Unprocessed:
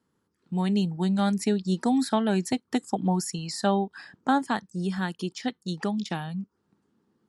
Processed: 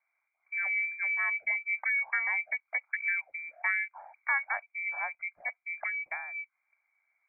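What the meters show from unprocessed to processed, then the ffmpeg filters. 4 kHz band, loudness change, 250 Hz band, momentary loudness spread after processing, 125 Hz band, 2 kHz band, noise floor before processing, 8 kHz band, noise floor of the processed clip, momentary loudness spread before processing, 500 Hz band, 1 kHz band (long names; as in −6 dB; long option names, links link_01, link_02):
below −40 dB, −3.5 dB, below −40 dB, 9 LU, below −40 dB, +11.0 dB, −76 dBFS, below −40 dB, −82 dBFS, 8 LU, −22.0 dB, −10.5 dB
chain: -af "lowpass=frequency=2100:width_type=q:width=0.5098,lowpass=frequency=2100:width_type=q:width=0.6013,lowpass=frequency=2100:width_type=q:width=0.9,lowpass=frequency=2100:width_type=q:width=2.563,afreqshift=-2500,lowshelf=frequency=520:width_type=q:width=3:gain=-9,volume=-7dB"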